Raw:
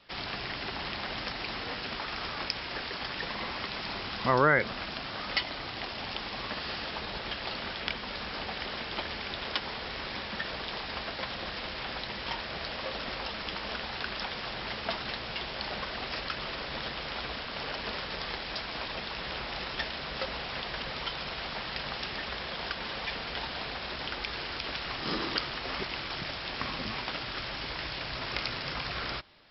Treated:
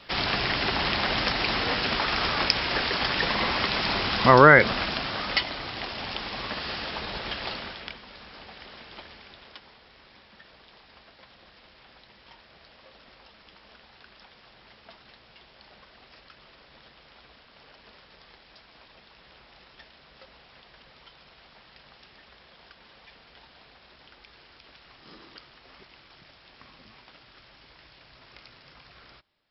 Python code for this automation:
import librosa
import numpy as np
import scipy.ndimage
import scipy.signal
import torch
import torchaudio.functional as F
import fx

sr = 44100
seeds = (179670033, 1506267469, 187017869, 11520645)

y = fx.gain(x, sr, db=fx.line((4.68, 10.0), (5.59, 3.0), (7.48, 3.0), (8.05, -9.0), (8.96, -9.0), (9.83, -17.0)))